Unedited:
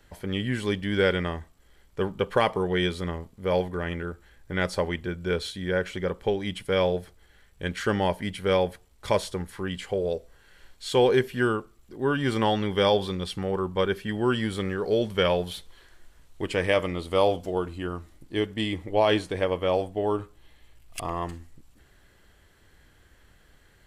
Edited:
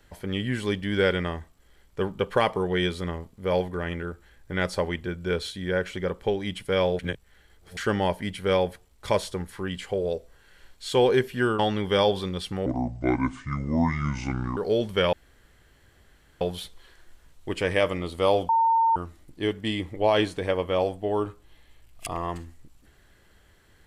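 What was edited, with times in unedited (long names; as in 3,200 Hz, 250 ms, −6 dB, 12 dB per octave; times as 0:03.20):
0:06.99–0:07.77: reverse
0:11.59–0:12.45: remove
0:13.52–0:14.78: play speed 66%
0:15.34: splice in room tone 1.28 s
0:17.42–0:17.89: beep over 909 Hz −17.5 dBFS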